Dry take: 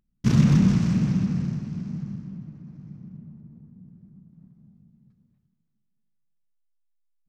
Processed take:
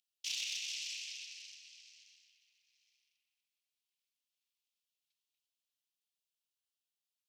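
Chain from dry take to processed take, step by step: steep high-pass 2700 Hz 48 dB/oct; high shelf 3600 Hz -10.5 dB; in parallel at -0.5 dB: limiter -43.5 dBFS, peak gain reduction 10 dB; on the sum: soft clip -32.5 dBFS, distortion -24 dB; gain +6 dB

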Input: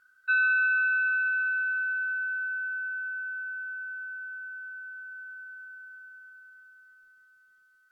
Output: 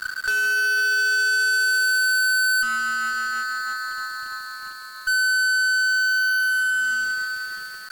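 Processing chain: spectral gain 2.62–5.08, 1300–3500 Hz -25 dB; negative-ratio compressor -33 dBFS, ratio -0.5; fuzz box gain 50 dB, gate -58 dBFS; gain -6 dB

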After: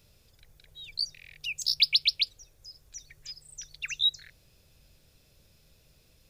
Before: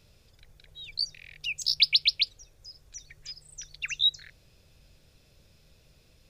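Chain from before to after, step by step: high shelf 10000 Hz +11 dB; gain -2.5 dB

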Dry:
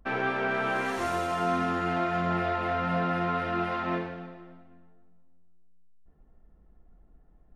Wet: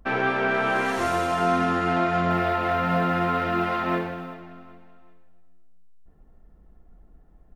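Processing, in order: 2.3–4.34 companded quantiser 8-bit; feedback echo 0.383 s, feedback 34%, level -17 dB; gain +5 dB

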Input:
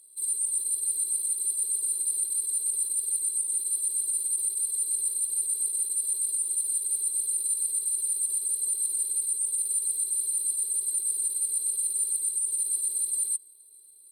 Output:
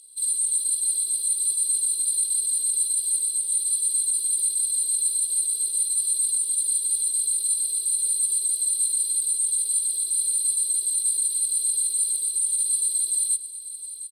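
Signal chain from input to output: band shelf 4700 Hz +12.5 dB; echo 0.708 s -12.5 dB

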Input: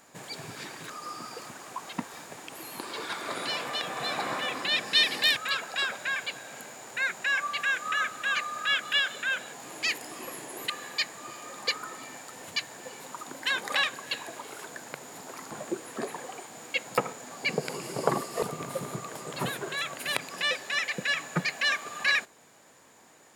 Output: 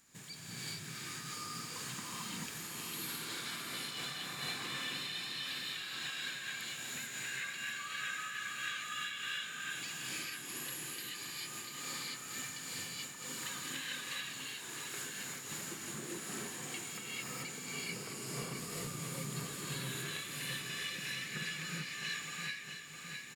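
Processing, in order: passive tone stack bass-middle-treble 6-0-2; compressor, threshold -57 dBFS, peak gain reduction 20.5 dB; on a send: feedback echo 0.66 s, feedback 60%, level -7.5 dB; on the sum: non-linear reverb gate 0.47 s rising, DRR -7.5 dB; noise-modulated level, depth 55%; gain +12.5 dB

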